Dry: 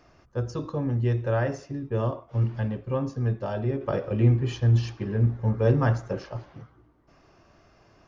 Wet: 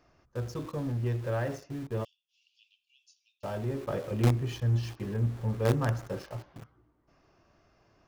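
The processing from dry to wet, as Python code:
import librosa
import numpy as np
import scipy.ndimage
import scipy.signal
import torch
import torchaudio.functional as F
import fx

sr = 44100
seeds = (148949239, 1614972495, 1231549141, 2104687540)

p1 = fx.steep_highpass(x, sr, hz=2600.0, slope=96, at=(2.03, 3.43), fade=0.02)
p2 = fx.quant_companded(p1, sr, bits=2)
p3 = p1 + (p2 * librosa.db_to_amplitude(-12.0))
y = p3 * librosa.db_to_amplitude(-7.5)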